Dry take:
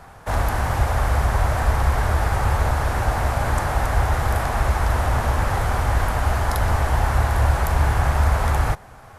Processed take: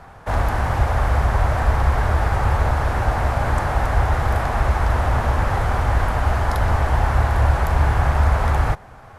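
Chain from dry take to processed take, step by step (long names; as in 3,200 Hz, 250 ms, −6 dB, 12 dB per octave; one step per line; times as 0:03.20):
high-shelf EQ 5,700 Hz −11 dB
level +1.5 dB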